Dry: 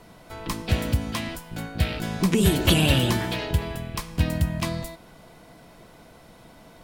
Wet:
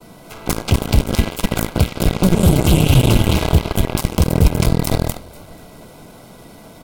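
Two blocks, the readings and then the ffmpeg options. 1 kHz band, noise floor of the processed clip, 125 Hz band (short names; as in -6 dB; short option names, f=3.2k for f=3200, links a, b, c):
+7.5 dB, -42 dBFS, +10.0 dB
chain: -filter_complex "[0:a]asoftclip=type=tanh:threshold=-14dB,equalizer=f=270:w=0.41:g=6,acrossover=split=150[a][b];[b]acompressor=threshold=-36dB:ratio=3[c];[a][c]amix=inputs=2:normalize=0,asplit=6[d][e][f][g][h][i];[e]adelay=245,afreqshift=-39,volume=-3.5dB[j];[f]adelay=490,afreqshift=-78,volume=-11dB[k];[g]adelay=735,afreqshift=-117,volume=-18.6dB[l];[h]adelay=980,afreqshift=-156,volume=-26.1dB[m];[i]adelay=1225,afreqshift=-195,volume=-33.6dB[n];[d][j][k][l][m][n]amix=inputs=6:normalize=0,agate=range=-33dB:threshold=-47dB:ratio=3:detection=peak,aeval=exprs='0.299*(cos(1*acos(clip(val(0)/0.299,-1,1)))-cos(1*PI/2))+0.0266*(cos(5*acos(clip(val(0)/0.299,-1,1)))-cos(5*PI/2))+0.0106*(cos(6*acos(clip(val(0)/0.299,-1,1)))-cos(6*PI/2))+0.0668*(cos(7*acos(clip(val(0)/0.299,-1,1)))-cos(7*PI/2))':c=same,highshelf=f=5.5k:g=8.5,acompressor=threshold=-28dB:ratio=6,asuperstop=centerf=1800:order=20:qfactor=7.3,alimiter=level_in=23.5dB:limit=-1dB:release=50:level=0:latency=1,volume=-1dB"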